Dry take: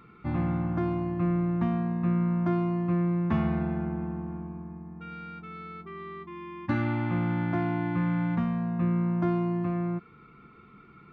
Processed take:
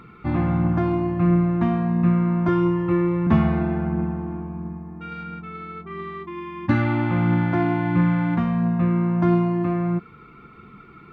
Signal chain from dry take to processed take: 2.48–3.27 comb 2.2 ms, depth 89%; phaser 1.5 Hz, delay 3.4 ms, feedback 25%; 5.23–5.91 air absorption 170 m; gain +7 dB

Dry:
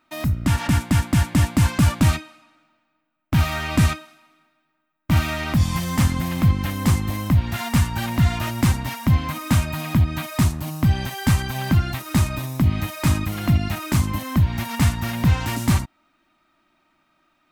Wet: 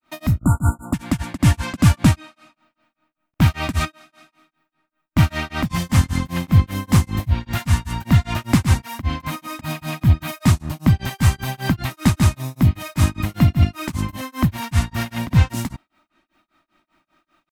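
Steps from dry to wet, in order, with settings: grains 0.206 s, grains 5.1/s, pitch spread up and down by 0 st; spectral delete 0.39–0.93, 1500–6900 Hz; gain +4.5 dB

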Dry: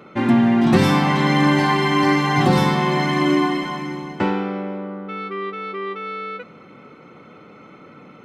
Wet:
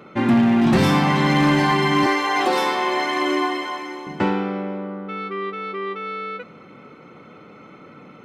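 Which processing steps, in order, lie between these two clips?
rattling part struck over -18 dBFS, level -27 dBFS; 2.06–4.07 HPF 350 Hz 24 dB/oct; hard clip -11 dBFS, distortion -18 dB

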